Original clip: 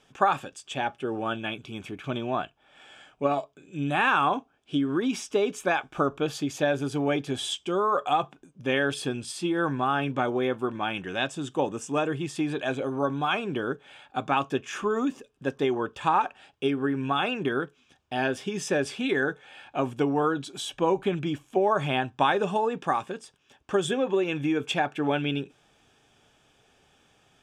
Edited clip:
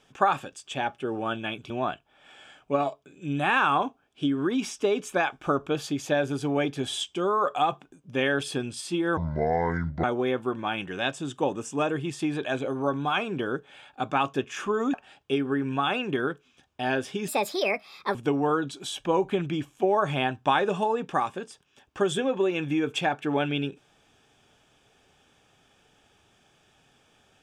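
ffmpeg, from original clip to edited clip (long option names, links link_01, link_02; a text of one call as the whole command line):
ffmpeg -i in.wav -filter_complex "[0:a]asplit=7[link_01][link_02][link_03][link_04][link_05][link_06][link_07];[link_01]atrim=end=1.702[link_08];[link_02]atrim=start=2.208:end=9.684[link_09];[link_03]atrim=start=9.68:end=10.2,asetpts=PTS-STARTPTS,asetrate=26460,aresample=44100[link_10];[link_04]atrim=start=10.196:end=15.102[link_11];[link_05]atrim=start=16.258:end=18.604[link_12];[link_06]atrim=start=18.6:end=19.88,asetpts=PTS-STARTPTS,asetrate=64827,aresample=44100[link_13];[link_07]atrim=start=19.876[link_14];[link_08][link_09]acrossfade=duration=0.004:curve1=hsin:curve2=hsin[link_15];[link_15][link_10]acrossfade=duration=0.004:curve1=hsin:curve2=hsin[link_16];[link_16][link_11]acrossfade=duration=0.004:curve1=hsin:curve2=hsin[link_17];[link_17][link_12]acrossfade=duration=0.004:curve1=hsin:curve2=hsin[link_18];[link_18][link_13]acrossfade=duration=0.004:curve1=hsin:curve2=hsin[link_19];[link_19][link_14]acrossfade=duration=0.004:curve1=hsin:curve2=hsin" out.wav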